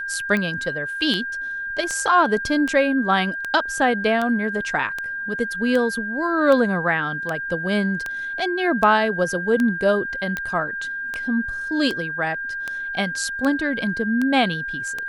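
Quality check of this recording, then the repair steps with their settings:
scratch tick 78 rpm −12 dBFS
whistle 1,600 Hz −26 dBFS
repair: click removal
notch filter 1,600 Hz, Q 30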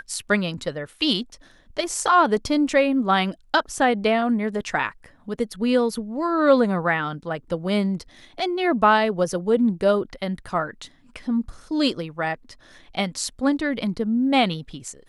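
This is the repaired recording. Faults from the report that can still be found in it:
none of them is left

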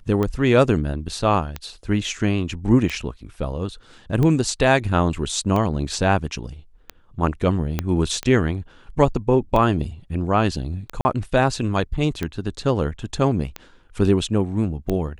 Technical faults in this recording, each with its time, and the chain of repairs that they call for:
scratch tick 45 rpm −12 dBFS
0:07.79: click −8 dBFS
0:11.01–0:11.05: drop-out 40 ms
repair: click removal
repair the gap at 0:11.01, 40 ms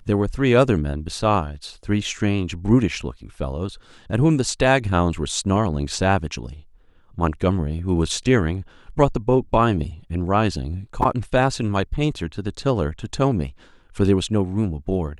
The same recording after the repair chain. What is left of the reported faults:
0:07.79: click

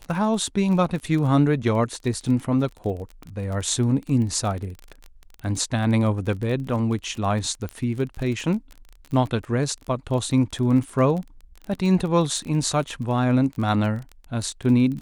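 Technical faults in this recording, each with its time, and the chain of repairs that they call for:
surface crackle 24 per second −29 dBFS
0:07.69: click −19 dBFS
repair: click removal

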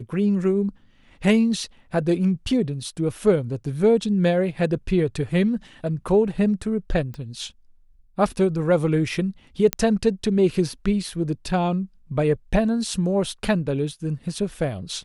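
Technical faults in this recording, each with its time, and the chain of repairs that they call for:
0:07.14: click −24 dBFS
0:09.73: click −4 dBFS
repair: click removal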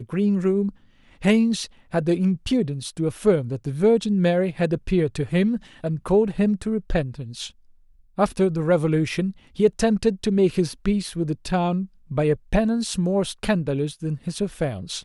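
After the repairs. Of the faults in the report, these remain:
none of them is left

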